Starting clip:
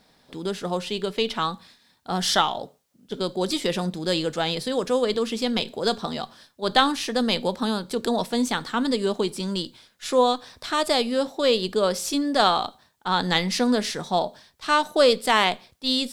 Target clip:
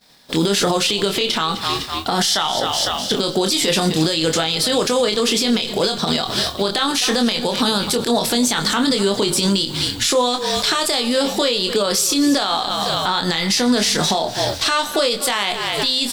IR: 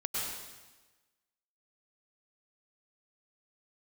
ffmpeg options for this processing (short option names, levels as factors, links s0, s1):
-filter_complex "[0:a]equalizer=f=10000:w=3.8:g=-3,asplit=5[s0][s1][s2][s3][s4];[s1]adelay=252,afreqshift=-42,volume=0.106[s5];[s2]adelay=504,afreqshift=-84,volume=0.0507[s6];[s3]adelay=756,afreqshift=-126,volume=0.0243[s7];[s4]adelay=1008,afreqshift=-168,volume=0.0117[s8];[s0][s5][s6][s7][s8]amix=inputs=5:normalize=0,agate=range=0.0224:threshold=0.00447:ratio=3:detection=peak,highshelf=f=2100:g=10.5,acompressor=threshold=0.0282:ratio=12,asplit=2[s9][s10];[s10]adelay=25,volume=0.447[s11];[s9][s11]amix=inputs=2:normalize=0,asplit=2[s12][s13];[1:a]atrim=start_sample=2205[s14];[s13][s14]afir=irnorm=-1:irlink=0,volume=0.0501[s15];[s12][s15]amix=inputs=2:normalize=0,alimiter=level_in=26.6:limit=0.891:release=50:level=0:latency=1,volume=0.422"